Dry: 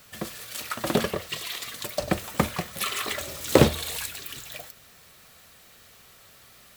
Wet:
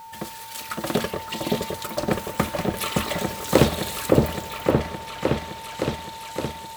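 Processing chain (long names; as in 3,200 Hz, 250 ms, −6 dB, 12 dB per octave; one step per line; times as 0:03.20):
steady tone 900 Hz −39 dBFS
echo whose low-pass opens from repeat to repeat 566 ms, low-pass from 750 Hz, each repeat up 1 octave, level 0 dB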